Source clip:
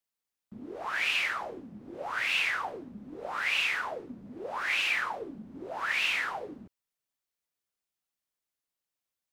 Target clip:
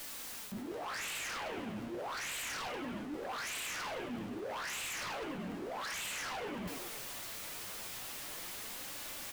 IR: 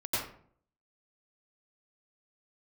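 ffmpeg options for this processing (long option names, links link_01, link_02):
-filter_complex "[0:a]aeval=exprs='val(0)+0.5*0.0112*sgn(val(0))':channel_layout=same,acrossover=split=3600[link_01][link_02];[link_01]dynaudnorm=framelen=490:gausssize=3:maxgain=3.5dB[link_03];[link_03][link_02]amix=inputs=2:normalize=0,flanger=delay=3.4:depth=6.1:regen=55:speed=0.33:shape=sinusoidal,asplit=7[link_04][link_05][link_06][link_07][link_08][link_09][link_10];[link_05]adelay=103,afreqshift=80,volume=-10.5dB[link_11];[link_06]adelay=206,afreqshift=160,volume=-15.9dB[link_12];[link_07]adelay=309,afreqshift=240,volume=-21.2dB[link_13];[link_08]adelay=412,afreqshift=320,volume=-26.6dB[link_14];[link_09]adelay=515,afreqshift=400,volume=-31.9dB[link_15];[link_10]adelay=618,afreqshift=480,volume=-37.3dB[link_16];[link_04][link_11][link_12][link_13][link_14][link_15][link_16]amix=inputs=7:normalize=0,aeval=exprs='0.0282*(abs(mod(val(0)/0.0282+3,4)-2)-1)':channel_layout=same,asplit=2[link_17][link_18];[link_18]adelay=17,volume=-12.5dB[link_19];[link_17][link_19]amix=inputs=2:normalize=0,areverse,acompressor=threshold=-45dB:ratio=6,areverse,volume=6dB"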